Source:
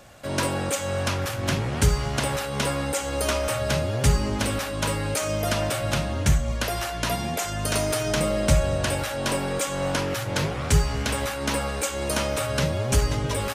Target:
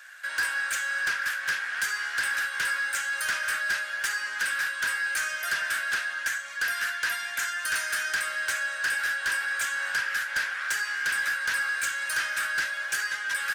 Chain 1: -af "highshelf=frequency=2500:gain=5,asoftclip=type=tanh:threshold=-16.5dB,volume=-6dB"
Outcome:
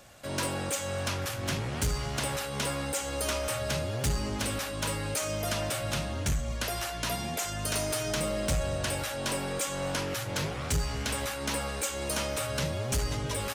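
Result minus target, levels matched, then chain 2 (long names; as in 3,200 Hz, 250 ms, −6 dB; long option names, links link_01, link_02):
2,000 Hz band −10.0 dB
-af "highpass=frequency=1600:width_type=q:width=14,highshelf=frequency=2500:gain=5,asoftclip=type=tanh:threshold=-16.5dB,volume=-6dB"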